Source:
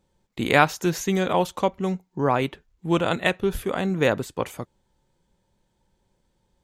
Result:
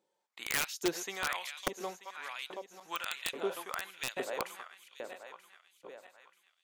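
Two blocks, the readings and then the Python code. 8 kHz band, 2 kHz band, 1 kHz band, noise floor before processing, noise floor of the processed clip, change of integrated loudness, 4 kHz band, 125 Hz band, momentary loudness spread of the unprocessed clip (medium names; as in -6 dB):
-3.0 dB, -11.0 dB, -15.0 dB, -71 dBFS, -80 dBFS, -13.5 dB, -6.5 dB, -28.0 dB, 12 LU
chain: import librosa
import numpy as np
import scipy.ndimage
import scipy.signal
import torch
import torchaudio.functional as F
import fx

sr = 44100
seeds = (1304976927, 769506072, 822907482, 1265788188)

y = fx.reverse_delay_fb(x, sr, ms=467, feedback_pct=61, wet_db=-11)
y = fx.filter_lfo_highpass(y, sr, shape='saw_up', hz=1.2, low_hz=360.0, high_hz=4100.0, q=1.4)
y = (np.mod(10.0 ** (13.5 / 20.0) * y + 1.0, 2.0) - 1.0) / 10.0 ** (13.5 / 20.0)
y = F.gain(torch.from_numpy(y), -8.5).numpy()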